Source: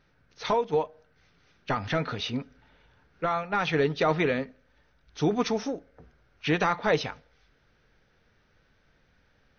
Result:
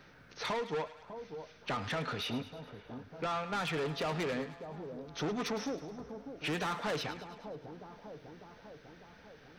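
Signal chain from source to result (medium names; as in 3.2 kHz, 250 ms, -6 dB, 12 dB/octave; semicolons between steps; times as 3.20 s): saturation -29.5 dBFS, distortion -7 dB; bass shelf 71 Hz -8 dB; on a send: two-band feedback delay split 940 Hz, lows 599 ms, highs 105 ms, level -13 dB; on the sum: three bands compressed up and down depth 40%; trim -1.5 dB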